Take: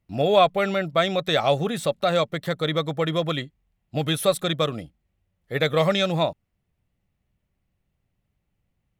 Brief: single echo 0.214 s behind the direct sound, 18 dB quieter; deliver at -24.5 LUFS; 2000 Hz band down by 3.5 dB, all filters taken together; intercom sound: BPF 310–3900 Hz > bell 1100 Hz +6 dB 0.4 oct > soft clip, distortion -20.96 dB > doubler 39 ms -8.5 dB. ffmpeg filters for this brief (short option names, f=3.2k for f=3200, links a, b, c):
-filter_complex "[0:a]highpass=310,lowpass=3.9k,equalizer=f=1.1k:t=o:w=0.4:g=6,equalizer=f=2k:t=o:g=-4.5,aecho=1:1:214:0.126,asoftclip=threshold=-9dB,asplit=2[a][b];[b]adelay=39,volume=-8.5dB[c];[a][c]amix=inputs=2:normalize=0"